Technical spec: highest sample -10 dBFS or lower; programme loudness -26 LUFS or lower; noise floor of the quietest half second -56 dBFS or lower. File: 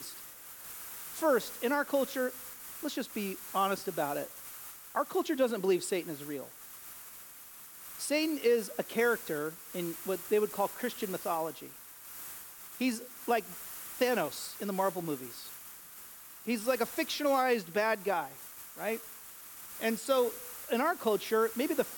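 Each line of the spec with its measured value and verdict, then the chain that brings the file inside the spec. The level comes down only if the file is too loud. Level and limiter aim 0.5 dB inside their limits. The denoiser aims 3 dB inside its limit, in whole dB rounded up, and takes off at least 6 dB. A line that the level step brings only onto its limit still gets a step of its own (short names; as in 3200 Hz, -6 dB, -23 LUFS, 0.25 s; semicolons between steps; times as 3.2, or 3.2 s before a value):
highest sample -16.0 dBFS: OK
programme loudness -33.0 LUFS: OK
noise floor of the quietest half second -50 dBFS: fail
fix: denoiser 9 dB, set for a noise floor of -50 dBFS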